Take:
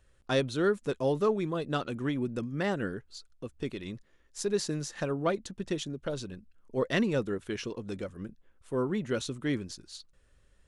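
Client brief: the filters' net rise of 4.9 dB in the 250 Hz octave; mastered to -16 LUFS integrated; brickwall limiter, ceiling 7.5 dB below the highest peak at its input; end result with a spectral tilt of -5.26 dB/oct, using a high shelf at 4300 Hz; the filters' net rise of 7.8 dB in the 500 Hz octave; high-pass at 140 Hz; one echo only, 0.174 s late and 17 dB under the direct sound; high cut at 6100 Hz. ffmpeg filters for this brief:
-af "highpass=140,lowpass=6.1k,equalizer=f=250:t=o:g=4,equalizer=f=500:t=o:g=8.5,highshelf=f=4.3k:g=-6,alimiter=limit=-17dB:level=0:latency=1,aecho=1:1:174:0.141,volume=12.5dB"

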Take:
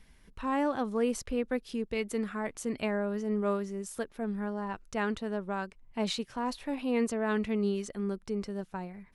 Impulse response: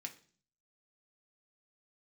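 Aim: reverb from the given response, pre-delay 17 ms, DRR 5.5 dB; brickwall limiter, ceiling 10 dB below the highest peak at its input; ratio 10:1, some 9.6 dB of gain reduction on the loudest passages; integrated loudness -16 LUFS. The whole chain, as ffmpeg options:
-filter_complex "[0:a]acompressor=threshold=-33dB:ratio=10,alimiter=level_in=9dB:limit=-24dB:level=0:latency=1,volume=-9dB,asplit=2[a][b];[1:a]atrim=start_sample=2205,adelay=17[c];[b][c]afir=irnorm=-1:irlink=0,volume=-2.5dB[d];[a][d]amix=inputs=2:normalize=0,volume=26dB"

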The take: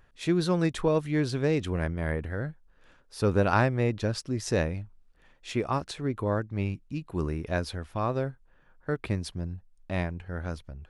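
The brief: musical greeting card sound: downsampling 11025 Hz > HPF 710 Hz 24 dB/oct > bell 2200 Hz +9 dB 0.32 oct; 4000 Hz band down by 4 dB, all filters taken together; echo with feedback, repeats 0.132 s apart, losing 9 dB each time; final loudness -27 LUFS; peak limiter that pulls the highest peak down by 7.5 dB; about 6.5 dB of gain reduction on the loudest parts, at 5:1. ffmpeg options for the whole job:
-af "equalizer=f=4k:t=o:g=-5.5,acompressor=threshold=-26dB:ratio=5,alimiter=limit=-24dB:level=0:latency=1,aecho=1:1:132|264|396|528:0.355|0.124|0.0435|0.0152,aresample=11025,aresample=44100,highpass=f=710:w=0.5412,highpass=f=710:w=1.3066,equalizer=f=2.2k:t=o:w=0.32:g=9,volume=16dB"

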